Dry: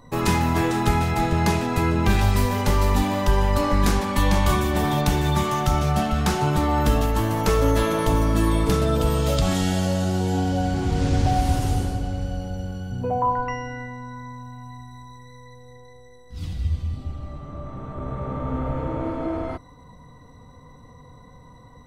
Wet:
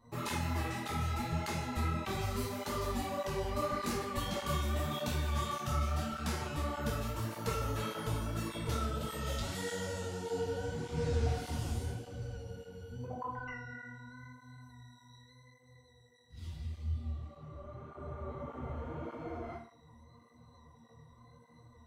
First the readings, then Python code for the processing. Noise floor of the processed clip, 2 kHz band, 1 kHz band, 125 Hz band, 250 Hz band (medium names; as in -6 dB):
-62 dBFS, -12.5 dB, -15.0 dB, -14.5 dB, -17.0 dB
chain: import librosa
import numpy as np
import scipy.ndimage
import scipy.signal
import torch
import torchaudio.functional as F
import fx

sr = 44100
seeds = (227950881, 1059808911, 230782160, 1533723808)

y = fx.resonator_bank(x, sr, root=39, chord='fifth', decay_s=0.46)
y = fx.flanger_cancel(y, sr, hz=1.7, depth_ms=7.3)
y = y * librosa.db_to_amplitude(3.5)